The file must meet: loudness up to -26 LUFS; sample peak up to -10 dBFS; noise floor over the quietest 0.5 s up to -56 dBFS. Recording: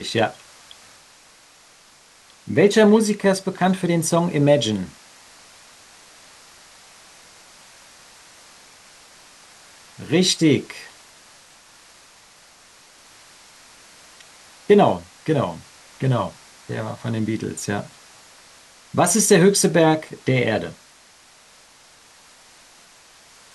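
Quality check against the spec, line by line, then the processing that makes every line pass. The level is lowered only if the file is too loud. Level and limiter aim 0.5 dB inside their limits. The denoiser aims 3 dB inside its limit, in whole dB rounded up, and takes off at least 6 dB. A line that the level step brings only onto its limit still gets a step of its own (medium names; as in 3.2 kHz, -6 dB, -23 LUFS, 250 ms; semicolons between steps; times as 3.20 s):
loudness -19.5 LUFS: fail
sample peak -3.5 dBFS: fail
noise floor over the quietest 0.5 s -51 dBFS: fail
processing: trim -7 dB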